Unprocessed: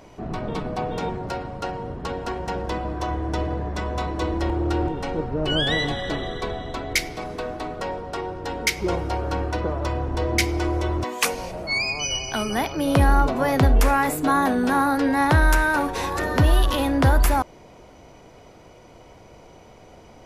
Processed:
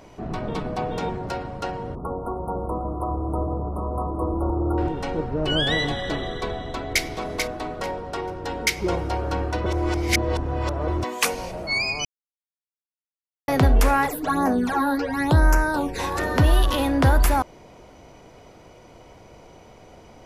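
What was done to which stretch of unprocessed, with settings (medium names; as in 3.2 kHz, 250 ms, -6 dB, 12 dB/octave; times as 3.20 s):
1.95–4.78 s: brick-wall FIR band-stop 1.4–8.6 kHz
6.51–7.03 s: echo throw 440 ms, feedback 20%, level -5.5 dB
9.66–10.88 s: reverse
12.05–13.48 s: mute
14.05–15.98 s: phase shifter stages 12, 2.1 Hz -> 0.39 Hz, lowest notch 120–3500 Hz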